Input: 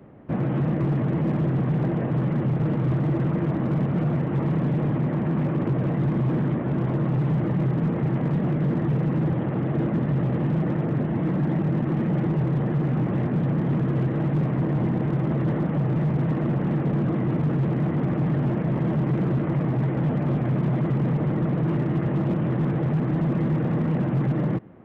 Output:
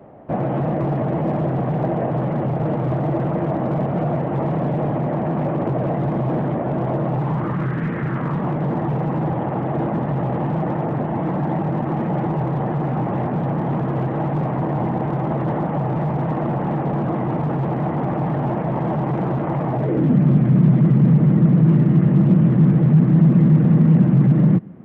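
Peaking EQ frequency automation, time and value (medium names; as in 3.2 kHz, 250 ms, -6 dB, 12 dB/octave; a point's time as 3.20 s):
peaking EQ +13 dB 1.1 oct
7.11 s 700 Hz
7.88 s 1.9 kHz
8.59 s 810 Hz
19.73 s 810 Hz
20.18 s 180 Hz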